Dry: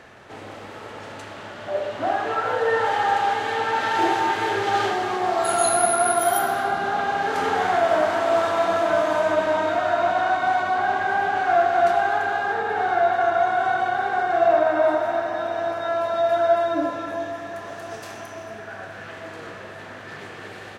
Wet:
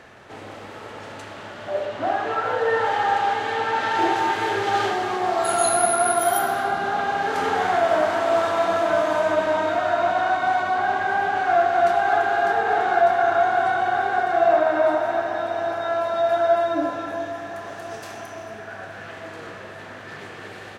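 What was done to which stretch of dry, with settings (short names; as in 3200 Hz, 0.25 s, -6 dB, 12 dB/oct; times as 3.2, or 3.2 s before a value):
1.85–4.16 high shelf 9600 Hz -8 dB
11.46–12.41 echo throw 0.6 s, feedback 75%, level -5 dB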